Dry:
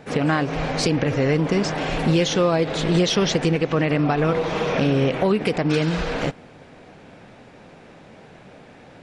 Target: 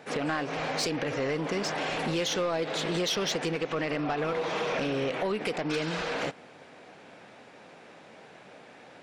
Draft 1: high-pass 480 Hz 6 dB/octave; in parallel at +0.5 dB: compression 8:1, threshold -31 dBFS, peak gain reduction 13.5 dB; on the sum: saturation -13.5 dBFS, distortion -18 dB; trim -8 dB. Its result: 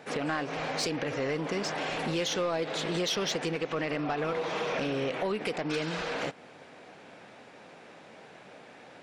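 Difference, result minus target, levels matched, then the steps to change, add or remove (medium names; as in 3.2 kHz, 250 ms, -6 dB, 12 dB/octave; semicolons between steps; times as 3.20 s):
compression: peak gain reduction +5.5 dB
change: compression 8:1, threshold -24.5 dBFS, peak gain reduction 8 dB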